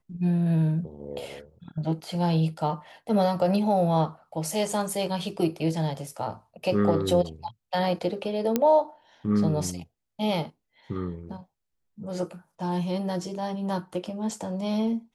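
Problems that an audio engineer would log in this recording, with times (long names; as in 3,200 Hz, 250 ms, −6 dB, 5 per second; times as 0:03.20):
0:08.56: click −9 dBFS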